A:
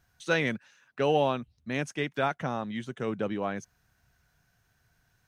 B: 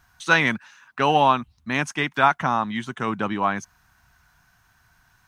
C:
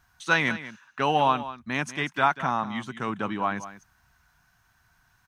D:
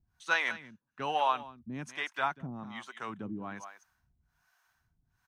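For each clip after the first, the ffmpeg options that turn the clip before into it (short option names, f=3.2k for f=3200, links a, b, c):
-af "equalizer=f=125:t=o:w=1:g=-4,equalizer=f=500:t=o:w=1:g=-11,equalizer=f=1k:t=o:w=1:g=10,volume=8.5dB"
-af "aecho=1:1:191:0.2,volume=-4.5dB"
-filter_complex "[0:a]acrossover=split=440[a][b];[a]aeval=exprs='val(0)*(1-1/2+1/2*cos(2*PI*1.2*n/s))':c=same[c];[b]aeval=exprs='val(0)*(1-1/2-1/2*cos(2*PI*1.2*n/s))':c=same[d];[c][d]amix=inputs=2:normalize=0,volume=-5dB"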